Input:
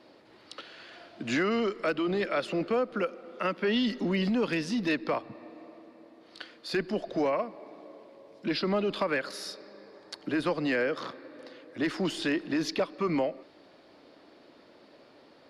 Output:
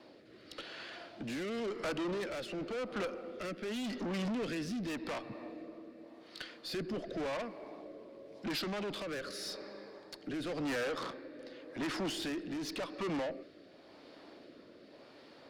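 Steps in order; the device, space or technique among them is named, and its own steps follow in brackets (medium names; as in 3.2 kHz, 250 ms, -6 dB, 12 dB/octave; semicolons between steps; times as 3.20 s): overdriven rotary cabinet (valve stage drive 36 dB, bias 0.2; rotary cabinet horn 0.9 Hz); trim +3 dB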